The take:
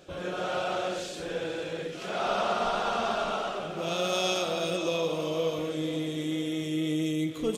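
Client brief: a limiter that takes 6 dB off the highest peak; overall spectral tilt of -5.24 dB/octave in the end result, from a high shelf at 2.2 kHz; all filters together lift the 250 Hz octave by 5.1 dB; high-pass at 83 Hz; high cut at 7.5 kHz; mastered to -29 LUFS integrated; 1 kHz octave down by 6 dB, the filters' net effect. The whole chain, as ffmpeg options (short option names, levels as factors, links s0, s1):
-af "highpass=83,lowpass=7500,equalizer=f=250:t=o:g=8.5,equalizer=f=1000:t=o:g=-9,highshelf=f=2200:g=-6,volume=1.26,alimiter=limit=0.112:level=0:latency=1"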